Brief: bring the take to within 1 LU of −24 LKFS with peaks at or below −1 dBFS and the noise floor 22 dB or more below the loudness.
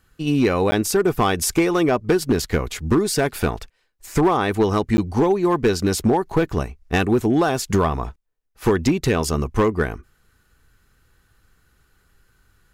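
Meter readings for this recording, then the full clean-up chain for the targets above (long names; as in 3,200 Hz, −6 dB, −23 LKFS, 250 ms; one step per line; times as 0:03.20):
share of clipped samples 0.8%; peaks flattened at −10.5 dBFS; number of dropouts 2; longest dropout 10 ms; integrated loudness −20.5 LKFS; sample peak −10.5 dBFS; target loudness −24.0 LKFS
→ clipped peaks rebuilt −10.5 dBFS
repair the gap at 0:00.71/0:04.97, 10 ms
level −3.5 dB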